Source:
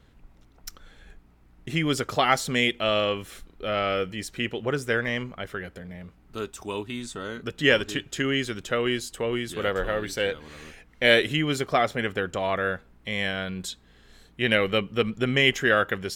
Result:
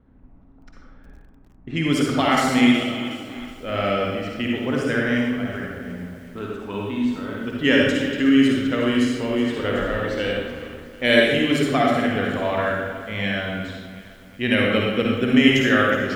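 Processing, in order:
parametric band 260 Hz +10.5 dB 0.29 octaves
low-pass that shuts in the quiet parts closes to 1,100 Hz, open at −19.5 dBFS
0:02.83–0:03.26: formant filter i
convolution reverb RT60 1.1 s, pre-delay 47 ms, DRR −2.5 dB
feedback echo at a low word length 369 ms, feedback 55%, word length 7 bits, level −14.5 dB
level −1.5 dB

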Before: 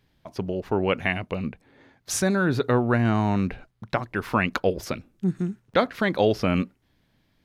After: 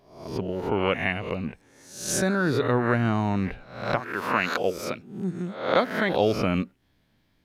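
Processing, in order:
peak hold with a rise ahead of every peak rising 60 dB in 0.60 s
0:03.99–0:06.09: high-pass filter 410 Hz → 120 Hz 6 dB per octave
level −2.5 dB

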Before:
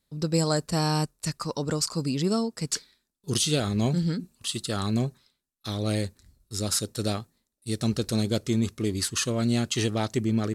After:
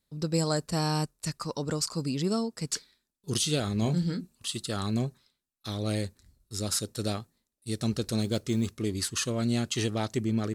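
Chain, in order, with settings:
0:03.79–0:04.21: double-tracking delay 28 ms −10.5 dB
0:08.20–0:08.76: noise that follows the level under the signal 34 dB
level −3 dB

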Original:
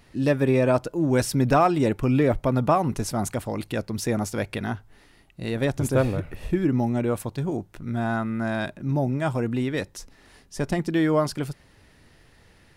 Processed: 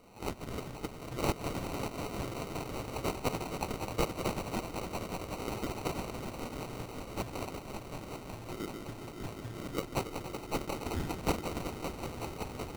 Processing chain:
feedback delay that plays each chunk backwards 138 ms, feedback 64%, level −8.5 dB
brick-wall band-stop 120–3,000 Hz
downward compressor 3 to 1, threshold −35 dBFS, peak gain reduction 9 dB
echo that builds up and dies away 188 ms, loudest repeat 5, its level −11 dB
auto-filter high-pass saw up 1.8 Hz 300–1,600 Hz
decimation without filtering 26×
level +8 dB

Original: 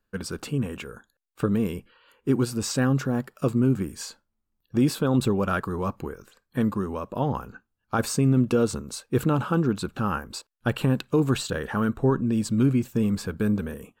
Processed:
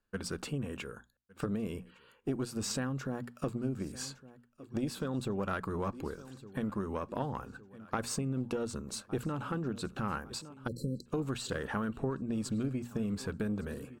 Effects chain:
on a send: repeating echo 1,160 ms, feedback 53%, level −23 dB
on the sum: downward compressor 6 to 1, threshold −26 dBFS, peak gain reduction 10 dB
parametric band 14,000 Hz −12.5 dB 0.2 octaves
mains-hum notches 60/120/180/240 Hz
harmonic generator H 2 −11 dB, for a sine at −15 dBFS
time-frequency box erased 0:10.67–0:11.06, 560–4,000 Hz
level −4.5 dB

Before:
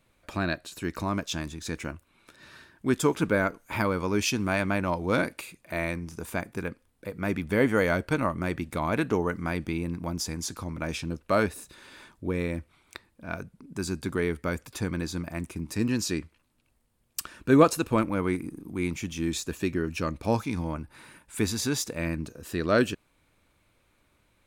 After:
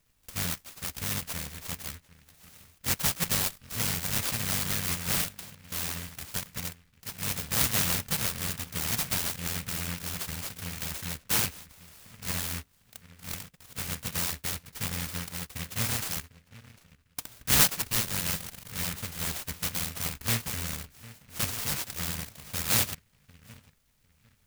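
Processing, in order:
samples in bit-reversed order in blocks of 128 samples
feedback echo with a low-pass in the loop 751 ms, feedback 23%, low-pass 1,200 Hz, level −17 dB
short delay modulated by noise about 1,900 Hz, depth 0.4 ms
level −1.5 dB

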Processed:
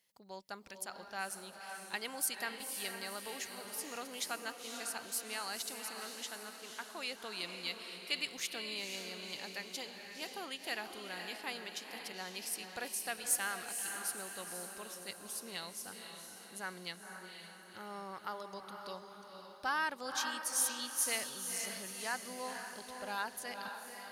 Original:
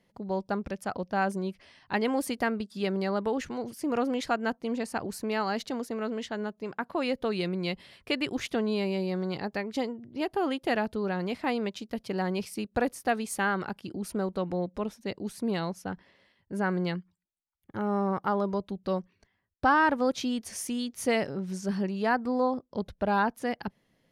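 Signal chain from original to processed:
first-order pre-emphasis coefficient 0.97
feedback delay with all-pass diffusion 503 ms, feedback 51%, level −5.5 dB
level +4 dB

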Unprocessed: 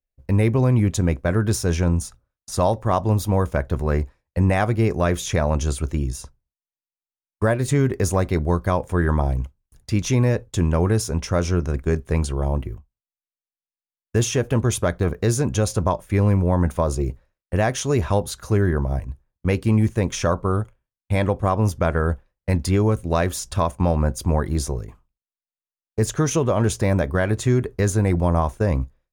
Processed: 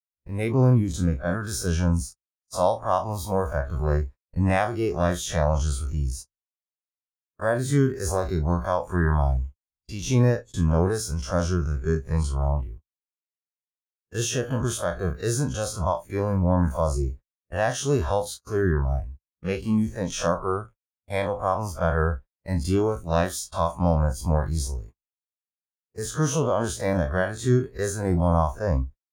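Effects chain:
spectrum smeared in time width 81 ms
noise gate −35 dBFS, range −35 dB
noise reduction from a noise print of the clip's start 12 dB
level +1 dB

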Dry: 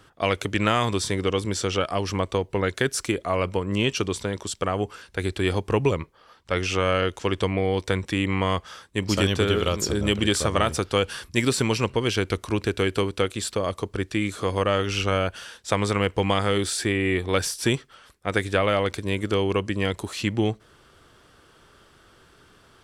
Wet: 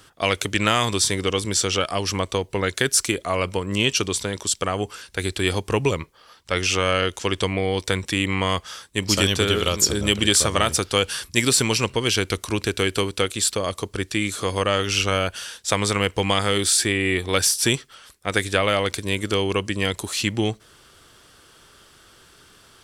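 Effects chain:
high-shelf EQ 2,900 Hz +11.5 dB

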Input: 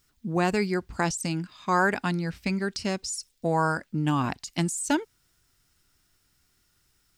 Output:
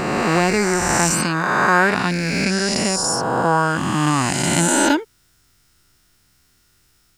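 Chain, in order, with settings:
peak hold with a rise ahead of every peak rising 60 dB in 2.59 s
level +5 dB

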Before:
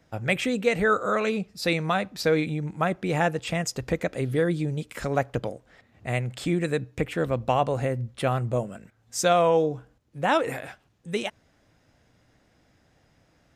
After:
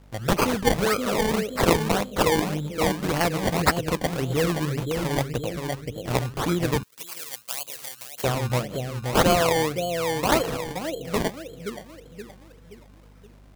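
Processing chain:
high shelf with overshoot 2,300 Hz +10.5 dB, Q 1.5
bucket-brigade delay 523 ms, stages 2,048, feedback 46%, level −4 dB
mains hum 50 Hz, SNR 26 dB
sample-and-hold swept by an LFO 23×, swing 100% 1.8 Hz
0:06.83–0:08.24: first difference

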